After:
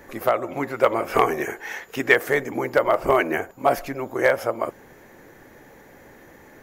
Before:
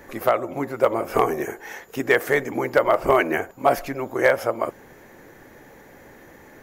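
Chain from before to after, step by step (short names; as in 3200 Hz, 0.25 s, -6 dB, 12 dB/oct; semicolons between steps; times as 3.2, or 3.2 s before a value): 0.42–2.14 bell 2400 Hz +6.5 dB 2.3 oct; gain -1 dB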